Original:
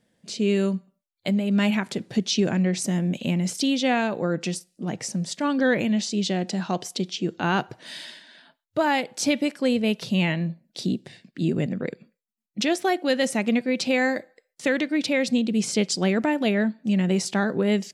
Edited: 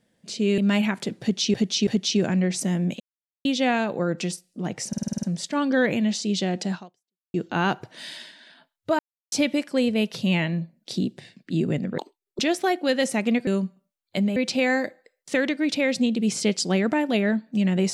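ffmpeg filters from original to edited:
-filter_complex "[0:a]asplit=20[a][b][c][d][e][f][g][h][i][j][k][l][m][n][o][p][q][r][s][t];[a]atrim=end=0.582[u];[b]atrim=start=1.468:end=2.432[v];[c]atrim=start=2.098:end=2.432[w];[d]atrim=start=2.098:end=3.23,asetpts=PTS-STARTPTS,afade=t=out:st=1.128:d=0.004:c=hsin[x];[e]atrim=start=3.23:end=3.68,asetpts=PTS-STARTPTS,volume=0[y];[f]atrim=start=3.68:end=5.162,asetpts=PTS-STARTPTS,afade=t=in:d=0.004:c=hsin[z];[g]atrim=start=5.108:end=5.162[aa];[h]atrim=start=5.108:end=5.162[ab];[i]atrim=start=5.108:end=5.162[ac];[j]atrim=start=5.108:end=5.162[ad];[k]atrim=start=5.108:end=5.162[ae];[l]atrim=start=5.108:end=5.162[af];[m]atrim=start=5.108:end=7.22,asetpts=PTS-STARTPTS,afade=t=out:st=1.512:d=0.6:c=exp[ag];[n]atrim=start=7.22:end=8.87,asetpts=PTS-STARTPTS,afade=t=in:d=0.004:c=hsin,afade=t=out:st=1.646:d=0.004:c=hsin[ah];[o]atrim=start=8.87:end=9.2,asetpts=PTS-STARTPTS,volume=0[ai];[p]atrim=start=9.2:end=11.864,asetpts=PTS-STARTPTS,afade=t=in:d=0.004:c=hsin[aj];[q]atrim=start=11.86:end=12.6,asetpts=PTS-STARTPTS,asetrate=79380,aresample=44100[ak];[r]atrim=start=12.596:end=13.682[al];[s]atrim=start=0.578:end=1.472[am];[t]atrim=start=13.678[an];[u][v]acrossfade=d=0.004:c1=hsin:c2=hsin[ao];[ao][w]acrossfade=d=0.004:c1=hsin:c2=hsin[ap];[x][y][z]concat=n=3:v=0:a=1[aq];[ap][aq]acrossfade=d=0.004:c1=hsin:c2=hsin[ar];[ar][aa]acrossfade=d=0.004:c1=hsin:c2=hsin[as];[as][ab]acrossfade=d=0.004:c1=hsin:c2=hsin[at];[at][ac]acrossfade=d=0.004:c1=hsin:c2=hsin[au];[au][ad]acrossfade=d=0.004:c1=hsin:c2=hsin[av];[av][ae]acrossfade=d=0.004:c1=hsin:c2=hsin[aw];[aw][af]acrossfade=d=0.004:c1=hsin:c2=hsin[ax];[ag][ah][ai][aj]concat=n=4:v=0:a=1[ay];[ax][ay]acrossfade=d=0.004:c1=hsin:c2=hsin[az];[az][ak]acrossfade=d=0.004:c1=hsin:c2=hsin[ba];[ba][al]acrossfade=d=0.004:c1=hsin:c2=hsin[bb];[bb][am]acrossfade=d=0.004:c1=hsin:c2=hsin[bc];[bc][an]acrossfade=d=0.004:c1=hsin:c2=hsin"

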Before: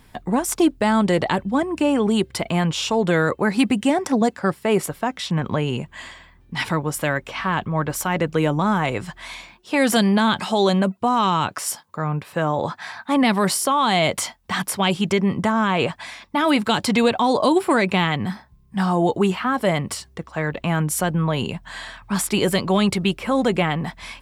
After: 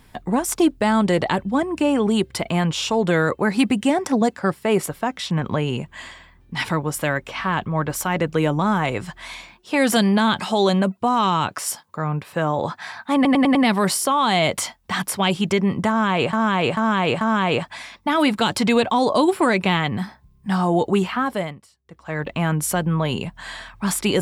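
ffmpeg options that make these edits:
-filter_complex "[0:a]asplit=10[a][b][c][d][e][f][g][h][i][j];[a]atrim=end=13.252[k];[b]atrim=start=13.148:end=13.252[l];[c]atrim=start=13.148:end=13.252[m];[d]atrim=start=13.148:end=13.252[n];[e]atrim=start=13.148:end=15.932[o];[f]atrim=start=15.488:end=15.932[p];[g]atrim=start=15.488:end=15.932[q];[h]atrim=start=15.488:end=19.9,asetpts=PTS-STARTPTS,afade=t=out:st=3.982:d=0.43:silence=0.0630957[r];[i]atrim=start=19.9:end=20.12,asetpts=PTS-STARTPTS,volume=-24dB[s];[j]atrim=start=20.12,asetpts=PTS-STARTPTS,afade=t=in:d=0.43:silence=0.0630957[t];[k][l]acrossfade=d=0.004:c1=hsin:c2=hsin[u];[u][m]acrossfade=d=0.004:c1=hsin:c2=hsin[v];[v][n]acrossfade=d=0.004:c1=hsin:c2=hsin[w];[w][o]acrossfade=d=0.004:c1=hsin:c2=hsin[x];[x][p]acrossfade=d=0.004:c1=hsin:c2=hsin[y];[y][q]acrossfade=d=0.004:c1=hsin:c2=hsin[z];[r][s][t]concat=n=3:v=0:a=1[aa];[z][aa]acrossfade=d=0.004:c1=hsin:c2=hsin"

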